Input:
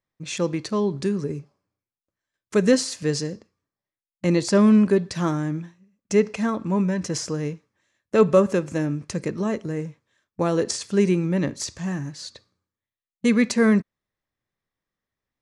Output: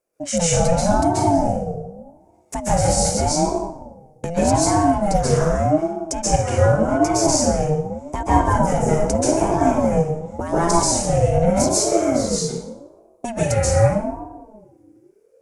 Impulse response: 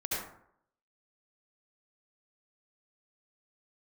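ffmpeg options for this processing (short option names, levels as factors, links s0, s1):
-filter_complex "[0:a]bass=f=250:g=9,treble=f=4000:g=-12,aexciter=amount=14.3:drive=3.3:freq=5600,acompressor=threshold=0.0708:ratio=6,asubboost=boost=10.5:cutoff=60[s0];[1:a]atrim=start_sample=2205,asetrate=22932,aresample=44100[s1];[s0][s1]afir=irnorm=-1:irlink=0,aeval=exprs='val(0)*sin(2*PI*410*n/s+410*0.25/0.84*sin(2*PI*0.84*n/s))':c=same,volume=1.5"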